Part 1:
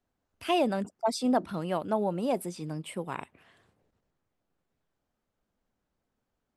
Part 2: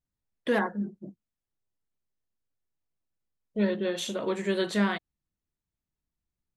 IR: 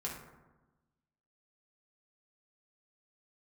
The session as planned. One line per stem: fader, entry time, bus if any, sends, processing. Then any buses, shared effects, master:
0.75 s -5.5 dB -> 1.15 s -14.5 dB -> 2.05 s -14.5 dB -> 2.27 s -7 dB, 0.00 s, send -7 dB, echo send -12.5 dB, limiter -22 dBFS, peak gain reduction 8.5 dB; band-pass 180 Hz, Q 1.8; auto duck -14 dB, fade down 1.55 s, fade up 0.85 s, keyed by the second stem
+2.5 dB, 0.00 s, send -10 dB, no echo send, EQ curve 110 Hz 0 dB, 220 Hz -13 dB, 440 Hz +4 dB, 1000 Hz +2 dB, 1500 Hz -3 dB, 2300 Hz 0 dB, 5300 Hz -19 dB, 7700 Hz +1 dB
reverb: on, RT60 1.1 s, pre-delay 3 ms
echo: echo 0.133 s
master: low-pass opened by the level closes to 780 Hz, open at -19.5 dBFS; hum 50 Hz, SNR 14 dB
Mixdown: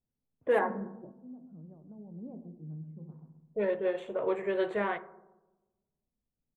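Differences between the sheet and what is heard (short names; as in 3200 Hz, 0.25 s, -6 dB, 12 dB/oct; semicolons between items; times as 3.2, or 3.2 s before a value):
stem 2 +2.5 dB -> -3.5 dB; master: missing hum 50 Hz, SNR 14 dB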